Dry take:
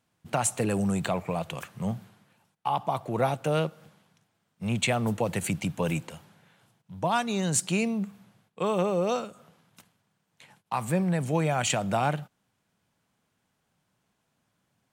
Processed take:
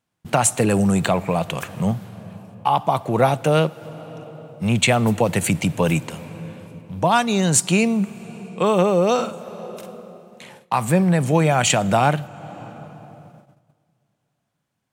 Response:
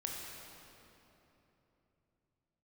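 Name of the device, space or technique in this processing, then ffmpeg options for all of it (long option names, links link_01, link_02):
ducked reverb: -filter_complex "[0:a]asplit=3[link_01][link_02][link_03];[1:a]atrim=start_sample=2205[link_04];[link_02][link_04]afir=irnorm=-1:irlink=0[link_05];[link_03]apad=whole_len=658161[link_06];[link_05][link_06]sidechaincompress=threshold=-35dB:ratio=8:attack=16:release=496,volume=-9dB[link_07];[link_01][link_07]amix=inputs=2:normalize=0,agate=range=-14dB:threshold=-54dB:ratio=16:detection=peak,asettb=1/sr,asplit=3[link_08][link_09][link_10];[link_08]atrim=end=9.144[link_11];[link_09]atrim=start=9.14:end=10.74,asetpts=PTS-STARTPTS,afade=type=in:duration=0.004:curve=qsin,afade=type=out:start_time=1.596:duration=0.004:curve=qsin,asplit=2[link_12][link_13];[link_13]adelay=47,volume=-5.5dB[link_14];[link_12][link_14]amix=inputs=2:normalize=0,atrim=end_sample=70560[link_15];[link_10]atrim=start=10.736[link_16];[link_11][link_15]acrossfade=duration=0.004:curve1=hsin:curve2=qsin[link_17];[link_17][link_16]acrossfade=duration=0.004:curve1=qsin:curve2=hsin,volume=8.5dB"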